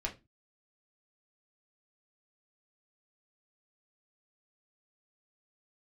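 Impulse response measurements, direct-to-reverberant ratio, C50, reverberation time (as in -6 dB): -1.0 dB, 14.5 dB, 0.25 s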